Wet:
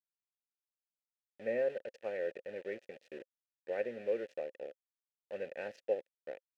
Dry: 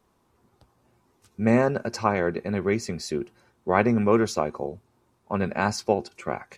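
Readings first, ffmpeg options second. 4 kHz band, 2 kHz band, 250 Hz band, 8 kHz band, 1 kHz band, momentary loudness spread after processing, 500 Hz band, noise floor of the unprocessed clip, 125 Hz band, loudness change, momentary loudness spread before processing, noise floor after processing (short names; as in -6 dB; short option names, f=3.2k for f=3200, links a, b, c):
under -20 dB, -16.0 dB, -26.0 dB, under -30 dB, -26.0 dB, 15 LU, -11.0 dB, -68 dBFS, under -30 dB, -14.0 dB, 12 LU, under -85 dBFS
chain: -filter_complex "[0:a]dynaudnorm=f=250:g=5:m=3.5dB,aeval=exprs='val(0)*gte(abs(val(0)),0.0531)':c=same,asplit=3[a][b][c];[a]bandpass=f=530:t=q:w=8,volume=0dB[d];[b]bandpass=f=1.84k:t=q:w=8,volume=-6dB[e];[c]bandpass=f=2.48k:t=q:w=8,volume=-9dB[f];[d][e][f]amix=inputs=3:normalize=0,volume=-7.5dB"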